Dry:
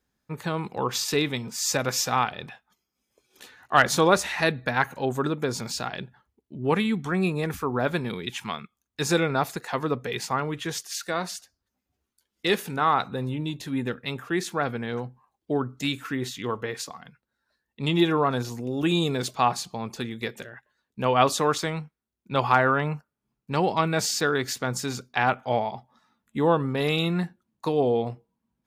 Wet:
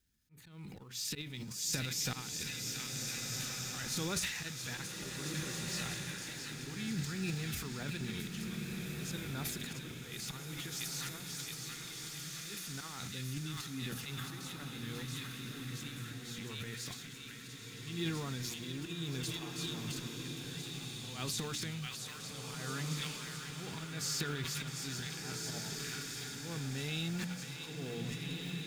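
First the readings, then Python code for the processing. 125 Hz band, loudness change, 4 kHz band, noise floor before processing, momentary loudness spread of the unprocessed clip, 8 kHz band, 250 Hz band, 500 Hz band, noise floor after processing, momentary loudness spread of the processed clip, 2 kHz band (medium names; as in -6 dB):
-9.0 dB, -13.5 dB, -7.5 dB, -83 dBFS, 13 LU, -5.5 dB, -13.5 dB, -21.5 dB, -48 dBFS, 7 LU, -13.5 dB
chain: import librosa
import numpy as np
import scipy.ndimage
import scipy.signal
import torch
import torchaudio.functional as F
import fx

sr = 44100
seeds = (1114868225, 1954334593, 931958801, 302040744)

y = fx.law_mismatch(x, sr, coded='mu')
y = fx.hum_notches(y, sr, base_hz=60, count=5)
y = fx.echo_wet_highpass(y, sr, ms=672, feedback_pct=61, hz=1900.0, wet_db=-6)
y = fx.auto_swell(y, sr, attack_ms=232.0)
y = fx.tone_stack(y, sr, knobs='6-0-2')
y = fx.transient(y, sr, attack_db=-3, sustain_db=11)
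y = fx.peak_eq(y, sr, hz=1100.0, db=-5.5, octaves=0.34)
y = fx.rev_bloom(y, sr, seeds[0], attack_ms=1660, drr_db=2.0)
y = y * librosa.db_to_amplitude(4.5)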